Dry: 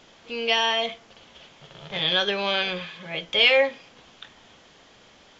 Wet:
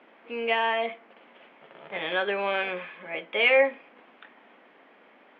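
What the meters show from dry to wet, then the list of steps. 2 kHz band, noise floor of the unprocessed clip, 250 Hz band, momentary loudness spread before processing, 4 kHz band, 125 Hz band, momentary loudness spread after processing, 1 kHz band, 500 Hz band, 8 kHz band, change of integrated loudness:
−1.5 dB, −54 dBFS, −3.5 dB, 16 LU, −12.0 dB, below −10 dB, 16 LU, 0.0 dB, −0.5 dB, can't be measured, −3.5 dB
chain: Chebyshev band-pass filter 240–2,300 Hz, order 3

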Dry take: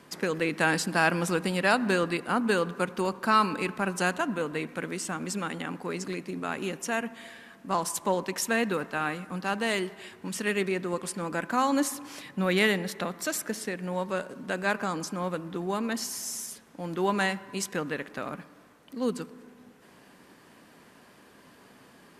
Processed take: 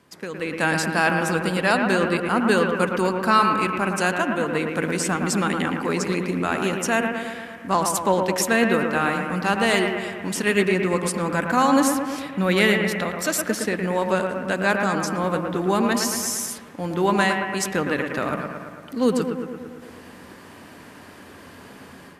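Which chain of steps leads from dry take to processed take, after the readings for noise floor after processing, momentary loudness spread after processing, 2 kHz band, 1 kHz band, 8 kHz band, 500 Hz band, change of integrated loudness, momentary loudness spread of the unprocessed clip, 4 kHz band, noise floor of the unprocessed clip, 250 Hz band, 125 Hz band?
−44 dBFS, 9 LU, +7.0 dB, +7.5 dB, +7.0 dB, +7.5 dB, +7.0 dB, 11 LU, +6.0 dB, −56 dBFS, +8.0 dB, +7.5 dB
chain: parametric band 86 Hz +12.5 dB 0.41 octaves
automatic gain control gain up to 14.5 dB
on a send: bucket-brigade delay 113 ms, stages 2,048, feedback 64%, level −5.5 dB
on the sum: level −5 dB

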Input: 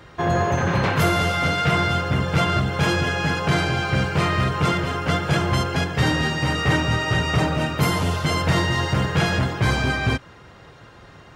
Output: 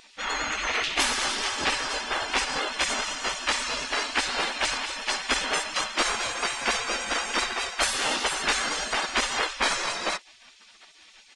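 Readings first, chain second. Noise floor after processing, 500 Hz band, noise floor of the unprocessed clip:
−54 dBFS, −9.0 dB, −46 dBFS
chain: gate on every frequency bin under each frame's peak −20 dB weak
downsampling to 22,050 Hz
pitch vibrato 10 Hz 41 cents
level +7 dB

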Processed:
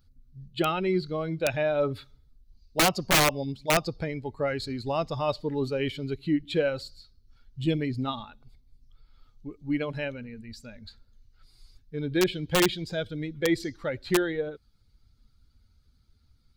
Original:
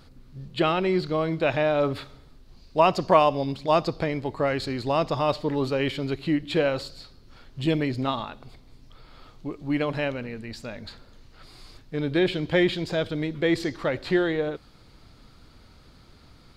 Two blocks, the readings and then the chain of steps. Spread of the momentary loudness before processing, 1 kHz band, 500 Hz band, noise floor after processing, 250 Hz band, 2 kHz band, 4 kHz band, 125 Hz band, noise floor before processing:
15 LU, −5.5 dB, −4.0 dB, −64 dBFS, −3.0 dB, −0.5 dB, +1.0 dB, −2.5 dB, −53 dBFS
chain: spectral dynamics exaggerated over time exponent 1.5
wrap-around overflow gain 14.5 dB

